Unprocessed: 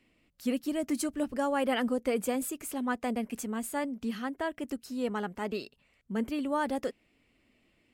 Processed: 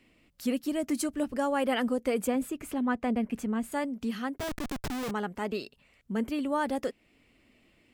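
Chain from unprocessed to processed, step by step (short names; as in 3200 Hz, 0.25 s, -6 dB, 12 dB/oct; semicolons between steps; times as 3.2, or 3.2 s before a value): 2.27–3.72 tone controls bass +6 dB, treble -10 dB; in parallel at -2.5 dB: compressor 16:1, threshold -42 dBFS, peak gain reduction 18.5 dB; 4.38–5.11 on the sum: Schmitt trigger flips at -39.5 dBFS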